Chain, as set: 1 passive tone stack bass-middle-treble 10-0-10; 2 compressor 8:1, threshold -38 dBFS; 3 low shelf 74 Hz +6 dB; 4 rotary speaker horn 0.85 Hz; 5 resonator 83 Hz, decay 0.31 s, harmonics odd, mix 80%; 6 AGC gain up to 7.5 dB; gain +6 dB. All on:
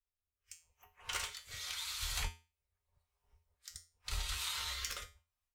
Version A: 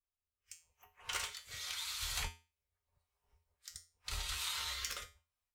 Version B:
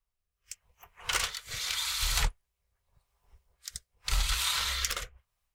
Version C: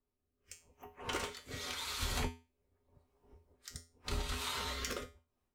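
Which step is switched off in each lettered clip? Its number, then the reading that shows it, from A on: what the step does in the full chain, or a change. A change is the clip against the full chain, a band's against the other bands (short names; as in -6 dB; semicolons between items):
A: 3, 125 Hz band -3.0 dB; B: 5, loudness change +9.5 LU; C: 1, 250 Hz band +16.0 dB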